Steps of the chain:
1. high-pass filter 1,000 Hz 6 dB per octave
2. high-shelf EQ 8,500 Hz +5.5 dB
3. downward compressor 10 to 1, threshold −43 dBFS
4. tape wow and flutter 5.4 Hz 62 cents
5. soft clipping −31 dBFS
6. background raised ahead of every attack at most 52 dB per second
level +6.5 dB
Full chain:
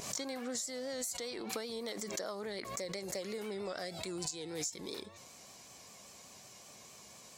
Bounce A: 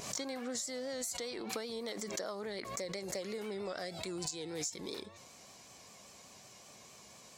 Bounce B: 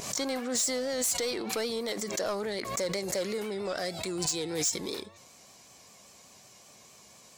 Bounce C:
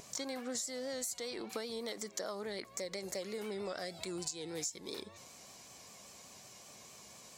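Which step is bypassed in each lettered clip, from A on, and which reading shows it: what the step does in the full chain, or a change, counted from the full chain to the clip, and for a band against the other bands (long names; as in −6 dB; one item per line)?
2, change in momentary loudness spread +1 LU
3, average gain reduction 6.5 dB
6, change in crest factor −2.5 dB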